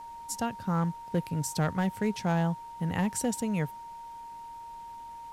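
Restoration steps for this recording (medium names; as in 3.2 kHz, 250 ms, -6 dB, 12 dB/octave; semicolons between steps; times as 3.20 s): clip repair -20.5 dBFS; band-stop 930 Hz, Q 30; expander -36 dBFS, range -21 dB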